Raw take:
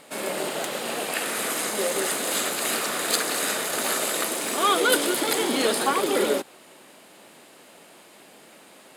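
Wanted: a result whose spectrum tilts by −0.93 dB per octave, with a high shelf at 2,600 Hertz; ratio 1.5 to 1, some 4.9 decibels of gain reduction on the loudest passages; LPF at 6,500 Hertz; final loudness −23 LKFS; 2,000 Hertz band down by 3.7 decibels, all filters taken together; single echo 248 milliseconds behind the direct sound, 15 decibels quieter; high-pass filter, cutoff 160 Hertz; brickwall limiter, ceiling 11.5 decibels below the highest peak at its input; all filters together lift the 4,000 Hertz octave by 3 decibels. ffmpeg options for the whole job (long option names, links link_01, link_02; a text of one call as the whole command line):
ffmpeg -i in.wav -af "highpass=160,lowpass=6500,equalizer=frequency=2000:width_type=o:gain=-7.5,highshelf=frequency=2600:gain=3,equalizer=frequency=4000:width_type=o:gain=4,acompressor=threshold=-30dB:ratio=1.5,alimiter=limit=-20.5dB:level=0:latency=1,aecho=1:1:248:0.178,volume=6.5dB" out.wav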